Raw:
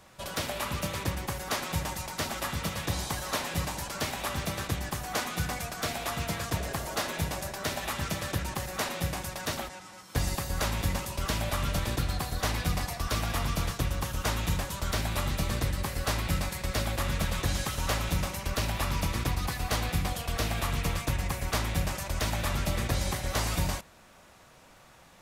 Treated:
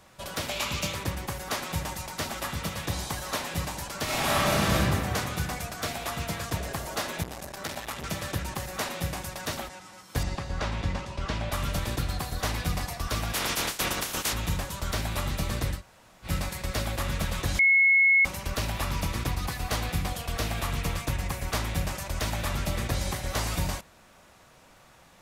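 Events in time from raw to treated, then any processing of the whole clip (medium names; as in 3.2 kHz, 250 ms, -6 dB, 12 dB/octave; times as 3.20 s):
0.49–0.93 s: time-frequency box 2.1–7.8 kHz +7 dB
4.04–4.76 s: reverb throw, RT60 2.2 s, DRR -9.5 dB
7.23–8.04 s: transformer saturation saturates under 1.3 kHz
10.23–11.52 s: distance through air 120 m
13.33–14.32 s: spectral peaks clipped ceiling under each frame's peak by 25 dB
15.78–16.27 s: room tone, crossfade 0.10 s
17.59–18.25 s: bleep 2.18 kHz -16.5 dBFS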